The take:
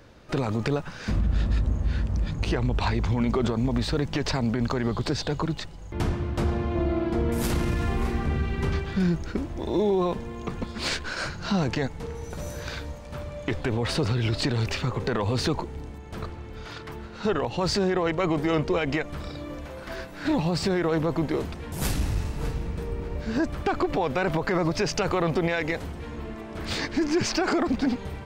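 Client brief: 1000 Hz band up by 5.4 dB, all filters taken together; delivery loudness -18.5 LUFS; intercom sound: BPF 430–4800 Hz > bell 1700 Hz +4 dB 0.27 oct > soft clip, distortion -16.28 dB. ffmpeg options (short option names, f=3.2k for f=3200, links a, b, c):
-af "highpass=430,lowpass=4.8k,equalizer=f=1k:t=o:g=7,equalizer=f=1.7k:t=o:w=0.27:g=4,asoftclip=threshold=-17.5dB,volume=12.5dB"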